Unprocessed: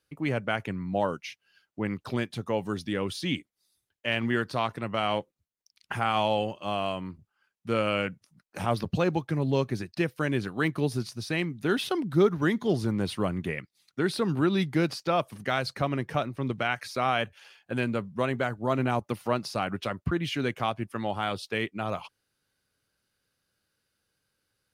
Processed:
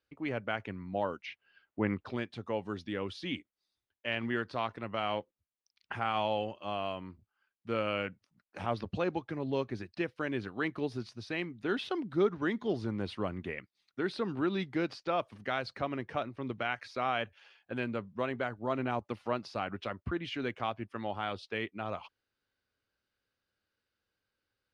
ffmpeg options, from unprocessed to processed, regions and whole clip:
-filter_complex "[0:a]asettb=1/sr,asplit=3[a][b][c];[a]atrim=end=1.264[d];[b]atrim=start=1.26:end=2.06,asetpts=PTS-STARTPTS,afade=t=in:d=0.004:c=qsin,afade=t=out:st=0.796:d=0.004:c=qsin,acontrast=69,lowpass=2.8k[e];[c]atrim=start=2.056[f];[d][e]acrossfade=d=0.004:c1=hsin:c2=qsin[g];[g][f]acrossfade=d=0.004:c1=qsin:c2=hsin,lowpass=4.1k,equalizer=f=150:t=o:w=0.52:g=-9.5,volume=-5.5dB"

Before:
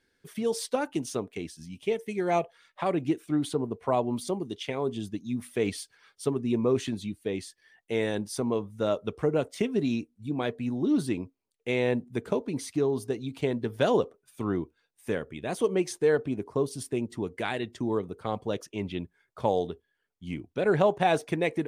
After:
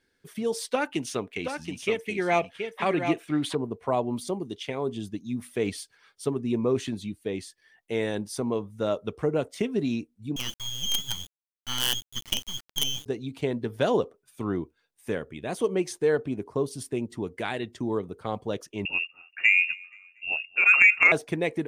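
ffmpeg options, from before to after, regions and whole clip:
-filter_complex "[0:a]asettb=1/sr,asplit=3[a][b][c];[a]atrim=end=0.714[d];[b]atrim=start=0.71:end=3.55,asetpts=PTS-STARTPTS,afade=t=in:d=0.004:c=qsin,afade=t=out:st=2.836:d=0.004:c=qsin,equalizer=f=2.3k:w=0.8:g=9.5,aecho=1:1:725:0.447,atrim=end_sample=125244[e];[c]atrim=start=3.546[f];[d][e]acrossfade=d=0.004:c1=hsin:c2=qsin[g];[g][f]acrossfade=d=0.004:c1=qsin:c2=hsin,asettb=1/sr,asplit=3[h][i][j];[h]atrim=end=10.364[k];[i]atrim=start=10.36:end=13.06,asetpts=PTS-STARTPTS,afade=t=in:d=0.004:c=qsin,afade=t=out:st=2.696:d=0.004:c=qsin,lowpass=f=3k:t=q:w=0.5098,lowpass=f=3k:t=q:w=0.6013,lowpass=f=3k:t=q:w=0.9,lowpass=f=3k:t=q:w=2.563,afreqshift=-3500,highpass=340,acrusher=bits=4:dc=4:mix=0:aa=0.000001[l];[j]atrim=start=13.056[m];[k][l]acrossfade=d=0.004:c1=hsin:c2=qsin[n];[n][m]acrossfade=d=0.004:c1=qsin:c2=hsin,asettb=1/sr,asplit=3[o][p][q];[o]atrim=end=18.854[r];[p]atrim=start=18.85:end=21.12,asetpts=PTS-STARTPTS,afade=t=in:d=0.004:c=qsin,afade=t=out:st=2.266:d=0.004:c=qsin,lowpass=f=2.5k:t=q:w=0.5098,lowpass=f=2.5k:t=q:w=0.6013,lowpass=f=2.5k:t=q:w=0.9,lowpass=f=2.5k:t=q:w=2.563,afreqshift=-2900,acontrast=37,aecho=1:1:237|474|711:0.0631|0.0259|0.0106,atrim=end_sample=100107[s];[q]atrim=start=21.116[t];[r][s]acrossfade=d=0.004:c1=hsin:c2=qsin[u];[u][t]acrossfade=d=0.004:c1=qsin:c2=hsin"

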